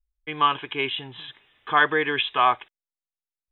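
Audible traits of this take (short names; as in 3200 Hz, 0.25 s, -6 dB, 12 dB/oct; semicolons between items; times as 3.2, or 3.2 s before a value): noise floor -94 dBFS; spectral tilt 0.0 dB/oct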